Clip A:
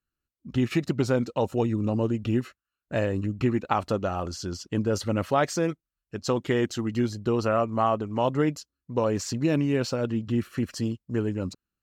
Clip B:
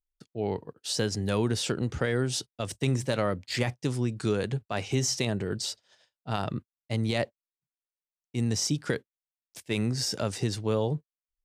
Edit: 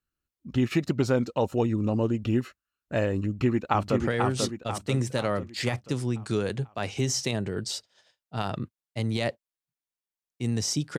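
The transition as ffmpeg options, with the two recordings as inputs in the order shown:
ffmpeg -i cue0.wav -i cue1.wav -filter_complex "[0:a]apad=whole_dur=10.98,atrim=end=10.98,atrim=end=4.002[link_01];[1:a]atrim=start=1.938:end=8.92[link_02];[link_01][link_02]acrossfade=duration=0.004:curve1=hsin:curve2=hsin,asplit=2[link_03][link_04];[link_04]afade=type=in:start_time=3.25:duration=0.01,afade=type=out:start_time=4:duration=0.01,aecho=0:1:490|980|1470|1960|2450|2940:0.630957|0.315479|0.157739|0.0788697|0.0394348|0.0197174[link_05];[link_03][link_05]amix=inputs=2:normalize=0" out.wav

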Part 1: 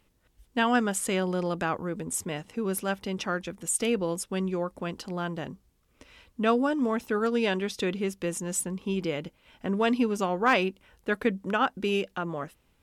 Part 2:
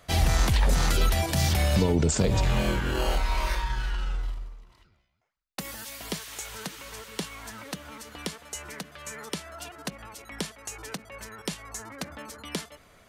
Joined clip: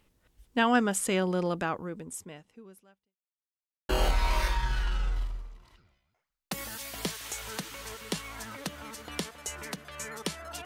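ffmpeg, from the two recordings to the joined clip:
ffmpeg -i cue0.wav -i cue1.wav -filter_complex "[0:a]apad=whole_dur=10.65,atrim=end=10.65,asplit=2[link_01][link_02];[link_01]atrim=end=3.17,asetpts=PTS-STARTPTS,afade=type=out:start_time=1.46:duration=1.71:curve=qua[link_03];[link_02]atrim=start=3.17:end=3.89,asetpts=PTS-STARTPTS,volume=0[link_04];[1:a]atrim=start=2.96:end=9.72,asetpts=PTS-STARTPTS,afade=type=in:duration=0.004:curve=hsin[link_05];[link_03][link_04][link_05]concat=n=3:v=0:a=1" out.wav

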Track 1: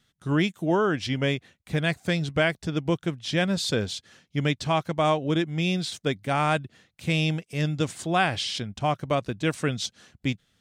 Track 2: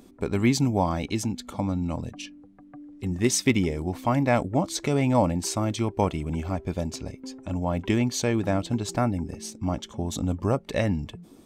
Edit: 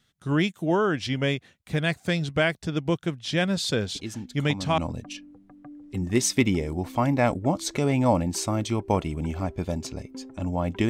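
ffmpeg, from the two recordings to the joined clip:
ffmpeg -i cue0.wav -i cue1.wav -filter_complex "[1:a]asplit=2[link_01][link_02];[0:a]apad=whole_dur=10.89,atrim=end=10.89,atrim=end=4.782[link_03];[link_02]atrim=start=1.868:end=7.98[link_04];[link_01]atrim=start=1.04:end=1.87,asetpts=PTS-STARTPTS,volume=-7.5dB,afade=type=in:duration=0.004:curve=hsin,afade=type=out:start_time=0.826:duration=0.004:curve=hsin,adelay=3950[link_05];[link_03][link_04]acrossfade=duration=0.004:curve1=hsin:curve2=hsin[link_06];[link_06][link_05]amix=inputs=2:normalize=0" out.wav

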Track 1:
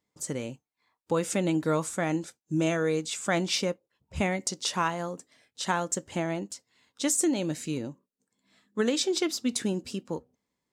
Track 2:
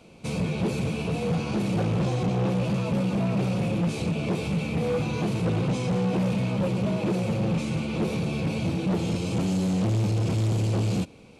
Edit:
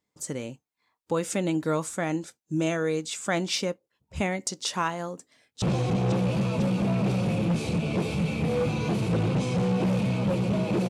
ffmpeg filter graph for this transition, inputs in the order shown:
ffmpeg -i cue0.wav -i cue1.wav -filter_complex "[0:a]apad=whole_dur=10.89,atrim=end=10.89,atrim=end=5.622[link_01];[1:a]atrim=start=1.948:end=7.22[link_02];[link_01][link_02]acrossfade=duration=0.004:curve1=hsin:curve2=hsin,asplit=2[link_03][link_04];[link_04]afade=type=in:start_time=5.22:duration=0.01,afade=type=out:start_time=5.62:duration=0.01,aecho=0:1:500|1000|1500|2000|2500|3000|3500|4000|4500|5000:0.334965|0.234476|0.164133|0.114893|0.0804252|0.0562976|0.0394083|0.0275858|0.0193101|0.0135171[link_05];[link_03][link_05]amix=inputs=2:normalize=0" out.wav

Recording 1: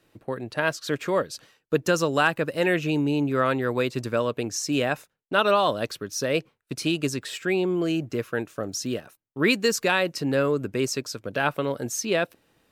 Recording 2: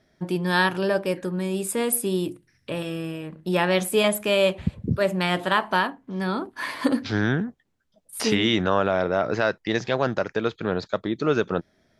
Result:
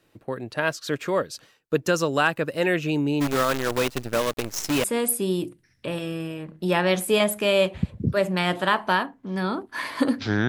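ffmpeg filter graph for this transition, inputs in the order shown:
ffmpeg -i cue0.wav -i cue1.wav -filter_complex "[0:a]asplit=3[link_01][link_02][link_03];[link_01]afade=type=out:start_time=3.2:duration=0.02[link_04];[link_02]acrusher=bits=5:dc=4:mix=0:aa=0.000001,afade=type=in:start_time=3.2:duration=0.02,afade=type=out:start_time=4.84:duration=0.02[link_05];[link_03]afade=type=in:start_time=4.84:duration=0.02[link_06];[link_04][link_05][link_06]amix=inputs=3:normalize=0,apad=whole_dur=10.48,atrim=end=10.48,atrim=end=4.842[link_07];[1:a]atrim=start=1.678:end=7.32[link_08];[link_07][link_08]acrossfade=duration=0.004:curve1=hsin:curve2=hsin" out.wav

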